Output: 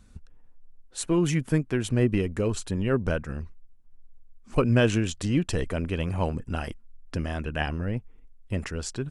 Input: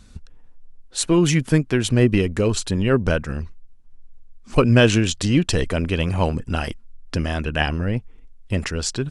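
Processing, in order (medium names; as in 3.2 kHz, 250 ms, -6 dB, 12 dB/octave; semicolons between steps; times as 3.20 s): peaking EQ 4.3 kHz -6 dB 1.4 oct; trim -6.5 dB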